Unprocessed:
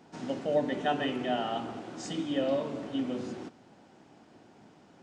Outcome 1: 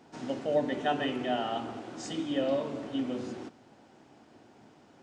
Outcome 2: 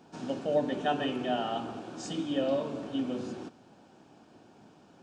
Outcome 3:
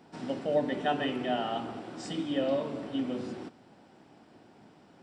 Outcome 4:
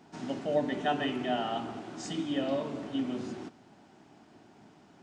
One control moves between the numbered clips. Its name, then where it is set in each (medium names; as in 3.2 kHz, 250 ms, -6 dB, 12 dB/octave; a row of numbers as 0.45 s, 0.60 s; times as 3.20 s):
band-stop, frequency: 180 Hz, 2 kHz, 6.5 kHz, 510 Hz